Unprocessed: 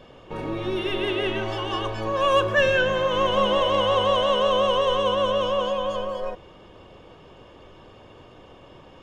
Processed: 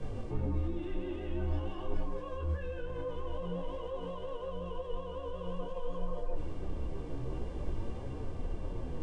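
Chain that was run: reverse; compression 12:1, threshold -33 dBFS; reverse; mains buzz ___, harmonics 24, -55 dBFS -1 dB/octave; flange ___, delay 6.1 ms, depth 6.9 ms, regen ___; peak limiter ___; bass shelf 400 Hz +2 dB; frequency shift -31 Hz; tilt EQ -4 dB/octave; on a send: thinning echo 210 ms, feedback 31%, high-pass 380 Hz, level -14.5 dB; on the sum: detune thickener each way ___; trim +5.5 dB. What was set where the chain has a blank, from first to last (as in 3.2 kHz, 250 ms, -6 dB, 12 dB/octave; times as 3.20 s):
400 Hz, 0.49 Hz, +57%, -39 dBFS, 18 cents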